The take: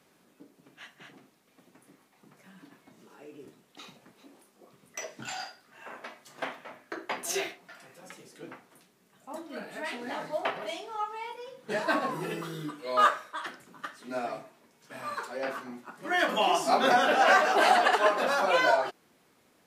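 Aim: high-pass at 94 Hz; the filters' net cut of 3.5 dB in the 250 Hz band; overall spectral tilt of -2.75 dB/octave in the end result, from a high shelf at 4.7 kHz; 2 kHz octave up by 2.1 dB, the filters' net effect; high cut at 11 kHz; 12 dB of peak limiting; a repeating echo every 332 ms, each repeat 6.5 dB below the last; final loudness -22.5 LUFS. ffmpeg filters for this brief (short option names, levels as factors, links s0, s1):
-af "highpass=94,lowpass=11000,equalizer=f=250:t=o:g=-4.5,equalizer=f=2000:t=o:g=4,highshelf=f=4700:g=-6.5,alimiter=limit=0.0891:level=0:latency=1,aecho=1:1:332|664|996|1328|1660|1992:0.473|0.222|0.105|0.0491|0.0231|0.0109,volume=3.16"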